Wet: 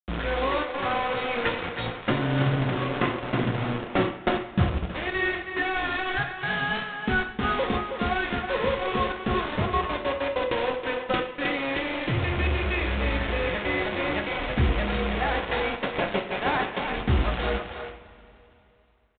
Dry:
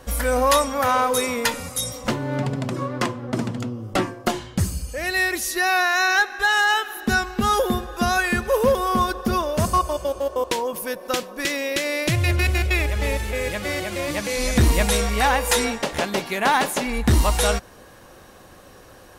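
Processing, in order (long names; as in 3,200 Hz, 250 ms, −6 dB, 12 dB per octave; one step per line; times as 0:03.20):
Chebyshev low-pass filter 2,700 Hz, order 2
in parallel at −6 dB: sample-rate reduction 1,500 Hz, jitter 0%
on the sum: speech leveller 0.5 s
dead-zone distortion −32.5 dBFS
bit reduction 4 bits
far-end echo of a speakerphone 320 ms, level −7 dB
on a send at −3 dB: convolution reverb, pre-delay 3 ms
on the sum: level −6.5 dB
G.726 40 kbit/s 8,000 Hz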